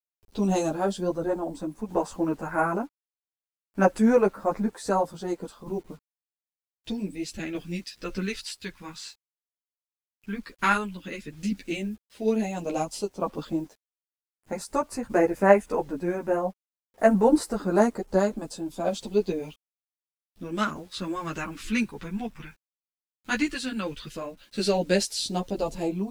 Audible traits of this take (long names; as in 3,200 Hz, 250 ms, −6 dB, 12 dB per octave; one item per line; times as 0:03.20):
phaser sweep stages 2, 0.078 Hz, lowest notch 600–3,600 Hz
a quantiser's noise floor 10 bits, dither none
tremolo saw down 0.53 Hz, depth 45%
a shimmering, thickened sound